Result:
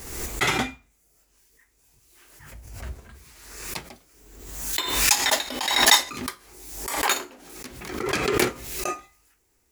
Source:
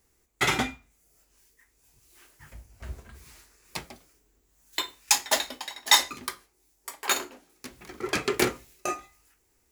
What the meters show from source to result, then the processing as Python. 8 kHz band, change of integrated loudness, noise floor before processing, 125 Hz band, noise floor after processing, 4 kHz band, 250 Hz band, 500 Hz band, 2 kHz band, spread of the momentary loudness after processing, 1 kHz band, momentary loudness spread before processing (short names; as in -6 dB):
+4.0 dB, +4.0 dB, -70 dBFS, +4.5 dB, -66 dBFS, +4.0 dB, +3.5 dB, +3.5 dB, +4.0 dB, 22 LU, +4.0 dB, 24 LU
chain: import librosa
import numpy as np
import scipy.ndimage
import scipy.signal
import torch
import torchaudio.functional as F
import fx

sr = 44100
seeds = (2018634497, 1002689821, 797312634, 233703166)

y = fx.pre_swell(x, sr, db_per_s=49.0)
y = y * 10.0 ** (1.0 / 20.0)